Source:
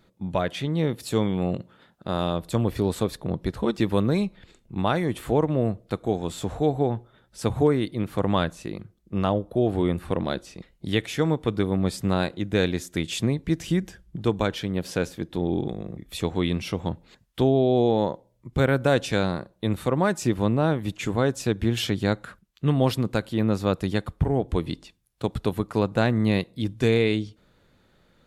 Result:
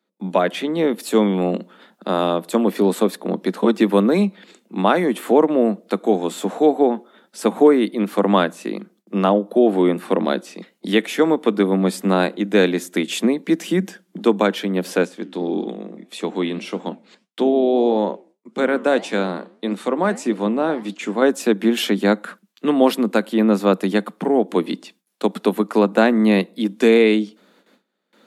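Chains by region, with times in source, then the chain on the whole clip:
15.05–21.22 s: low-pass 9.8 kHz 24 dB/octave + flange 1.7 Hz, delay 4.9 ms, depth 9.4 ms, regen -84%
whole clip: gate with hold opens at -51 dBFS; steep high-pass 190 Hz 72 dB/octave; dynamic bell 5.1 kHz, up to -6 dB, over -47 dBFS, Q 0.9; trim +8.5 dB

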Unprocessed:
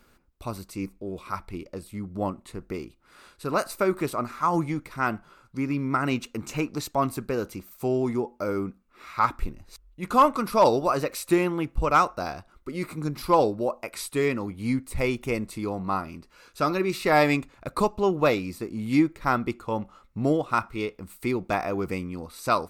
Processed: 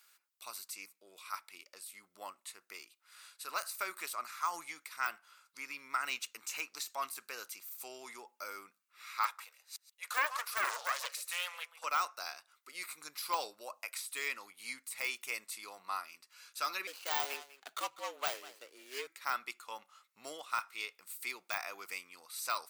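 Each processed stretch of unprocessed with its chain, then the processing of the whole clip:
9.25–11.84 s: steep high-pass 450 Hz 96 dB/octave + delay 135 ms -16 dB + loudspeaker Doppler distortion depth 0.73 ms
16.87–19.07 s: median filter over 25 samples + frequency shift +130 Hz + delay 197 ms -18 dB
whole clip: de-esser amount 80%; high-pass 1.4 kHz 12 dB/octave; treble shelf 3.7 kHz +10 dB; trim -5.5 dB

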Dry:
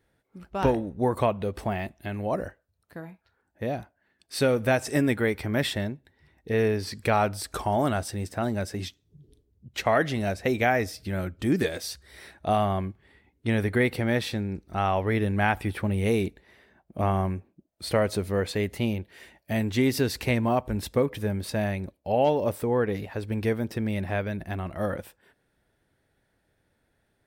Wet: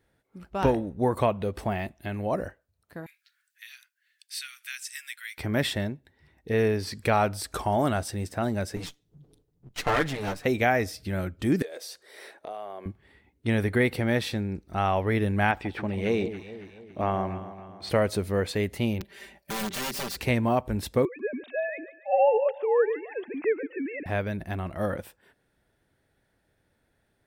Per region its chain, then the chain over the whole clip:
3.06–5.38 s: Bessel high-pass 2.9 kHz, order 8 + three bands compressed up and down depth 40%
8.76–10.45 s: comb filter that takes the minimum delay 6.7 ms + band-stop 610 Hz, Q 15
11.62–12.86 s: resonant high-pass 460 Hz, resonance Q 2.3 + compression 4:1, threshold -37 dBFS
15.51–17.90 s: boxcar filter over 4 samples + peaking EQ 90 Hz -7.5 dB 2 oct + echo whose repeats swap between lows and highs 139 ms, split 840 Hz, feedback 69%, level -9.5 dB
19.00–20.17 s: compression 3:1, threshold -33 dBFS + integer overflow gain 29.5 dB + comb 5.1 ms, depth 100%
21.05–24.06 s: formants replaced by sine waves + thinning echo 143 ms, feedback 54%, high-pass 740 Hz, level -13.5 dB
whole clip: none

